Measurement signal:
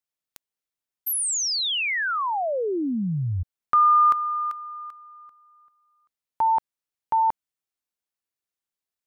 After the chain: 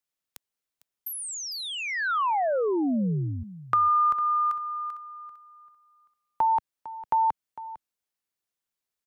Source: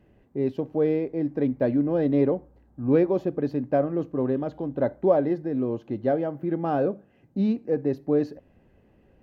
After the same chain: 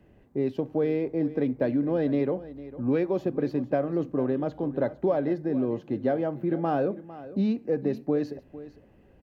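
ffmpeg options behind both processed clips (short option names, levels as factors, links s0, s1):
-filter_complex "[0:a]acrossover=split=130|1500[s0][s1][s2];[s0]acompressor=threshold=0.00501:ratio=4[s3];[s1]acompressor=threshold=0.0631:ratio=4[s4];[s2]acompressor=threshold=0.0126:ratio=4[s5];[s3][s4][s5]amix=inputs=3:normalize=0,asplit=2[s6][s7];[s7]aecho=0:1:453:0.158[s8];[s6][s8]amix=inputs=2:normalize=0,volume=1.19"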